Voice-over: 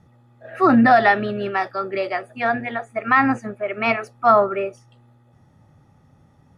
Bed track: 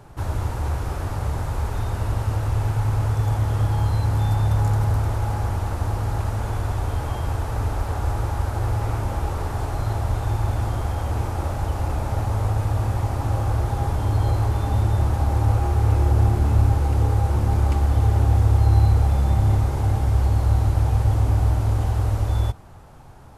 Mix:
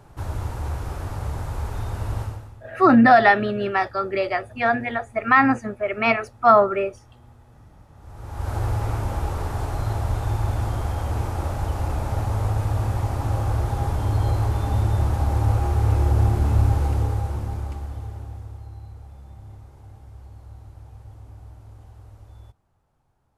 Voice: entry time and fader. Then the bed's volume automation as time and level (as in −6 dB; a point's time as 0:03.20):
2.20 s, +0.5 dB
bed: 0:02.22 −3.5 dB
0:02.63 −27 dB
0:07.92 −27 dB
0:08.51 −1 dB
0:16.85 −1 dB
0:18.78 −24 dB